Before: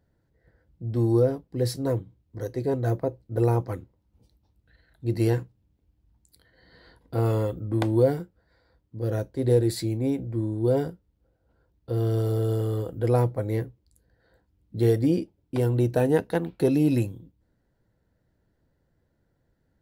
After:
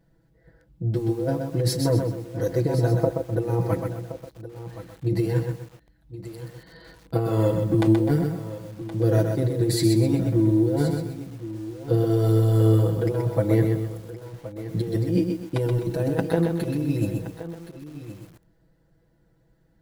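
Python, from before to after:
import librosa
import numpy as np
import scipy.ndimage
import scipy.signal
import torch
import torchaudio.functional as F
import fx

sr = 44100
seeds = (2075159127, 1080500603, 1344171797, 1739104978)

y = fx.highpass(x, sr, hz=89.0, slope=24, at=(7.74, 10.11))
y = fx.over_compress(y, sr, threshold_db=-25.0, ratio=-0.5)
y = fx.low_shelf(y, sr, hz=250.0, db=3.0)
y = y + 0.99 * np.pad(y, (int(6.1 * sr / 1000.0), 0))[:len(y)]
y = y + 10.0 ** (-14.0 / 20.0) * np.pad(y, (int(1071 * sr / 1000.0), 0))[:len(y)]
y = fx.echo_crushed(y, sr, ms=127, feedback_pct=35, bits=8, wet_db=-5.0)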